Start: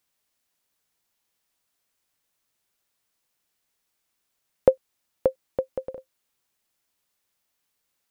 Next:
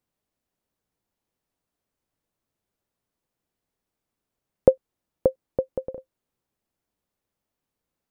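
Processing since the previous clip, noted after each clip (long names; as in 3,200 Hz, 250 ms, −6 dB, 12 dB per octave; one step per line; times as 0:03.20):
tilt shelving filter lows +8.5 dB
level −3 dB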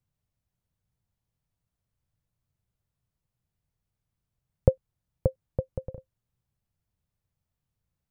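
low shelf with overshoot 190 Hz +14 dB, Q 1.5
level −5.5 dB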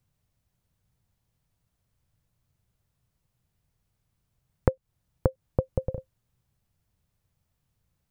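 downward compressor 6 to 1, threshold −26 dBFS, peak gain reduction 13.5 dB
level +7.5 dB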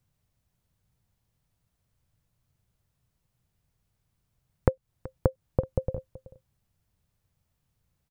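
single-tap delay 378 ms −18.5 dB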